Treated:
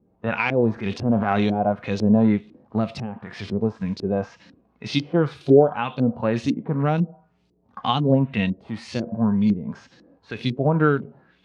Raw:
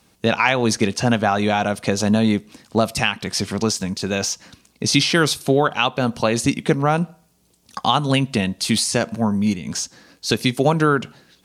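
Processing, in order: LFO low-pass saw up 2 Hz 310–4800 Hz; 0.73–1.47 transient shaper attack -9 dB, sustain +6 dB; harmonic-percussive split percussive -15 dB

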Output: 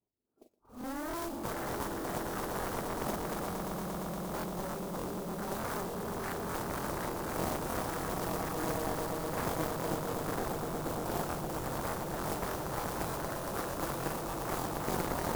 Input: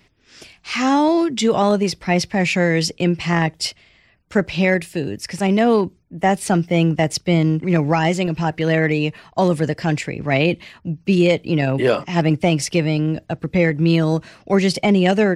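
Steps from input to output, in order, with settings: short-time reversal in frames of 89 ms; tilt +4 dB/oct; Schroeder reverb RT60 2.9 s, combs from 25 ms, DRR 15 dB; in parallel at +1 dB: compressor, threshold -35 dBFS, peak gain reduction 20 dB; on the sum: soft clip -19.5 dBFS, distortion -10 dB; Gaussian blur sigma 12 samples; modulation noise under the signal 15 dB; spectral noise reduction 17 dB; swelling echo 0.116 s, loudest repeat 8, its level -8 dB; added harmonics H 3 -15 dB, 7 -12 dB, 8 -16 dB, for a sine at -12.5 dBFS; crackling interface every 0.30 s, samples 1024, repeat, from 0.49; gain -8 dB

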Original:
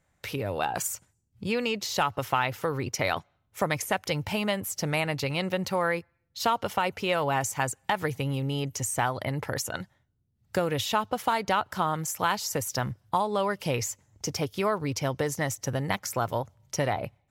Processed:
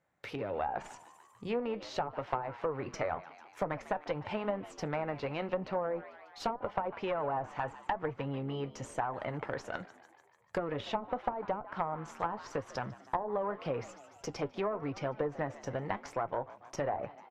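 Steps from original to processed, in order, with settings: HPF 170 Hz 6 dB/oct; added harmonics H 3 -20 dB, 4 -15 dB, 5 -15 dB, 7 -20 dB, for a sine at -10.5 dBFS; LPF 1200 Hz 6 dB/oct; low shelf 220 Hz -8 dB; in parallel at -2.5 dB: compressor, threshold -33 dBFS, peak gain reduction 10 dB; on the sum: frequency-shifting echo 0.148 s, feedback 63%, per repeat +72 Hz, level -18.5 dB; flange 0.86 Hz, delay 5.4 ms, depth 4.6 ms, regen -70%; treble ducked by the level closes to 520 Hz, closed at -26 dBFS

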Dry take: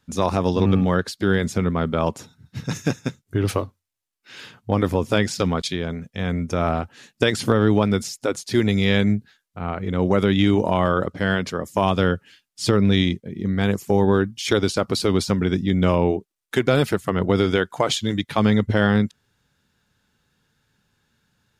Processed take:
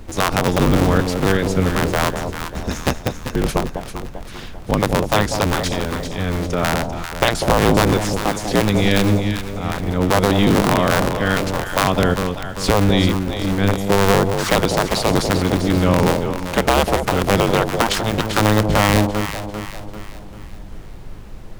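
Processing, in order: cycle switcher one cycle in 2, inverted; added noise brown -36 dBFS; echo with dull and thin repeats by turns 0.197 s, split 840 Hz, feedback 67%, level -5 dB; gain +2 dB

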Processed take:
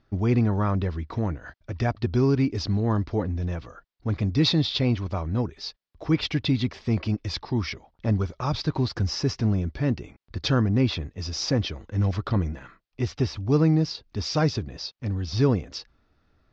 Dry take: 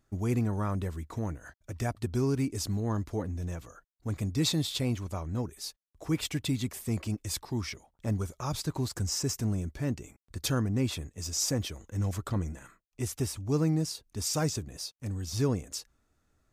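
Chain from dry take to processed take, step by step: steep low-pass 5200 Hz 48 dB/oct; gain +7 dB

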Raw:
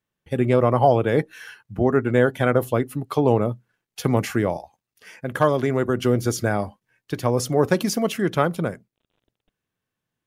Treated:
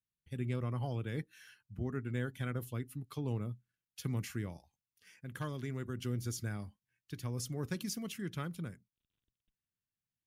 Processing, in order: passive tone stack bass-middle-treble 6-0-2; gain +2 dB

